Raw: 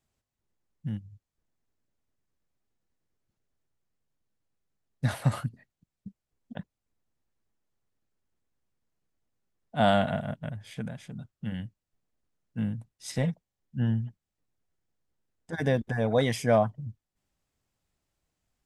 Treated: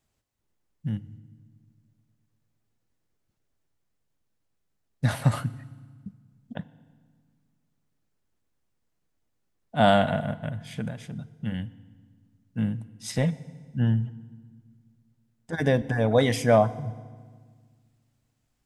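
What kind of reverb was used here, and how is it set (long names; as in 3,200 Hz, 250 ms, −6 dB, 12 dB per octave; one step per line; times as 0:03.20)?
feedback delay network reverb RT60 1.6 s, low-frequency decay 1.5×, high-frequency decay 0.85×, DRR 16 dB
level +3.5 dB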